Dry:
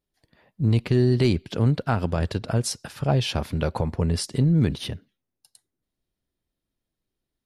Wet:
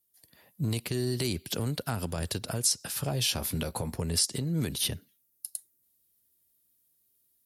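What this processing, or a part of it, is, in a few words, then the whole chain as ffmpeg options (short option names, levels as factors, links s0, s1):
FM broadcast chain: -filter_complex "[0:a]asettb=1/sr,asplit=3[s0][s1][s2];[s0]atrim=end=2.794[s3];[s1]atrim=start=2.79:end=3.97,asetpts=PTS-STARTPTS,afade=t=in:d=0.004:c=qsin,afade=t=out:st=1.176:d=0.004:c=qsin,asplit=2[s4][s5];[s5]adelay=17,volume=0.299[s6];[s4][s6]amix=inputs=2:normalize=0,atrim=end_sample=52038[s7];[s2]atrim=start=3.966[s8];[s3][s7]acrossfade=d=0.004:c1=hsin:c2=qsin[s9];[s9][s8]acrossfade=d=0.004:c1=qsin:c2=hsin,highpass=59,dynaudnorm=f=120:g=3:m=1.68,acrossover=split=330|7200[s10][s11][s12];[s10]acompressor=threshold=0.112:ratio=4[s13];[s11]acompressor=threshold=0.0794:ratio=4[s14];[s12]acompressor=threshold=0.00398:ratio=4[s15];[s13][s14][s15]amix=inputs=3:normalize=0,aemphasis=mode=production:type=50fm,alimiter=limit=0.211:level=0:latency=1:release=239,asoftclip=type=hard:threshold=0.188,lowpass=f=15000:w=0.5412,lowpass=f=15000:w=1.3066,aemphasis=mode=production:type=50fm,volume=0.447"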